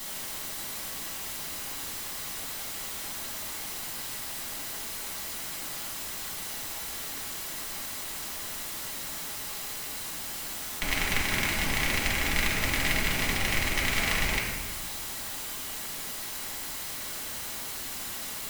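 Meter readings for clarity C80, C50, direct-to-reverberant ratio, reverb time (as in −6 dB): 4.0 dB, 1.5 dB, −4.5 dB, 1.4 s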